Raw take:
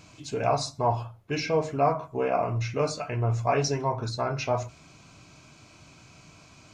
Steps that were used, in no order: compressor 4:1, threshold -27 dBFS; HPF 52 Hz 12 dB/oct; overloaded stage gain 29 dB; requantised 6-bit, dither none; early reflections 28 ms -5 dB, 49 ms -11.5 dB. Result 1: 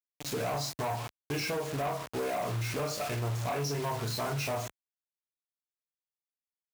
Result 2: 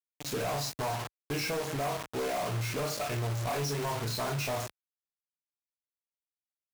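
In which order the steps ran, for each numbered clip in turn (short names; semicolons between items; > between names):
early reflections > requantised > compressor > overloaded stage > HPF; early reflections > compressor > requantised > HPF > overloaded stage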